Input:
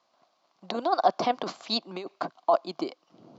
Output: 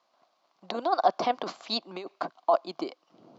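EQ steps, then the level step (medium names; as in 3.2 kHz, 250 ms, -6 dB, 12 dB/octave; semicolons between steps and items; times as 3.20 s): bass shelf 190 Hz -8.5 dB; treble shelf 5.1 kHz -4.5 dB; 0.0 dB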